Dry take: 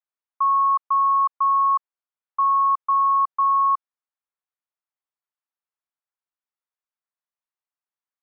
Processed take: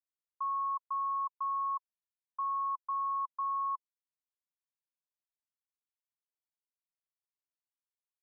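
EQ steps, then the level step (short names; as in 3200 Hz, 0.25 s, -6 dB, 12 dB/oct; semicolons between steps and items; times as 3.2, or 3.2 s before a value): band-pass 1000 Hz, Q 9.4; -8.5 dB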